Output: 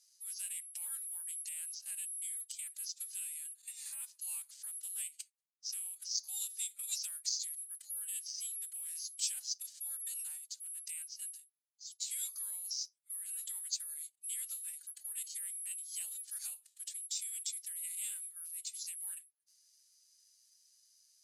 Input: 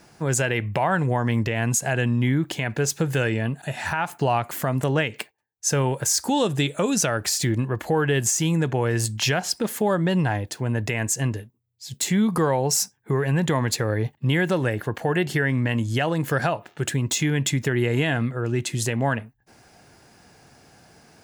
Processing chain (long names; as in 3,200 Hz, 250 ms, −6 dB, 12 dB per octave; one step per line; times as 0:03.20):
phase-vocoder pitch shift with formants kept +6 semitones
bad sample-rate conversion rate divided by 4×, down filtered, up zero stuff
flat-topped band-pass 5,900 Hz, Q 1.7
level −7.5 dB